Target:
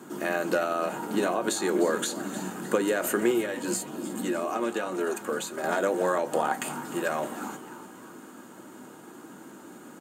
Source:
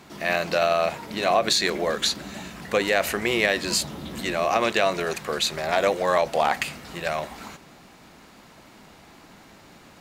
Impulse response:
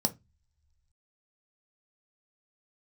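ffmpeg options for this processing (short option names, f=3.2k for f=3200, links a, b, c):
-filter_complex "[0:a]highpass=87,highshelf=f=8.7k:g=9.5,acompressor=threshold=-23dB:ratio=6,asettb=1/sr,asplit=3[a][b][c];[a]atrim=end=3.324[d];[b]atrim=start=3.32:end=5.64,asetpts=PTS-STARTPTS,afade=t=in:d=0.004:c=qsin,afade=t=out:st=2.316:d=0.004:c=qsin,flanger=delay=2.7:depth=1.5:regen=-46:speed=1.7:shape=triangular[e];[c]atrim=start=5.636[f];[d][e]acrossfade=d=0.004:c1=hsin:c2=qsin[g];[g][f]acrossfade=d=0.004:c1=qsin:c2=hsin,asplit=6[h][i][j][k][l][m];[i]adelay=305,afreqshift=140,volume=-14.5dB[n];[j]adelay=610,afreqshift=280,volume=-20.3dB[o];[k]adelay=915,afreqshift=420,volume=-26.2dB[p];[l]adelay=1220,afreqshift=560,volume=-32dB[q];[m]adelay=1525,afreqshift=700,volume=-37.9dB[r];[h][n][o][p][q][r]amix=inputs=6:normalize=0[s];[1:a]atrim=start_sample=2205,asetrate=70560,aresample=44100[t];[s][t]afir=irnorm=-1:irlink=0,volume=-4.5dB"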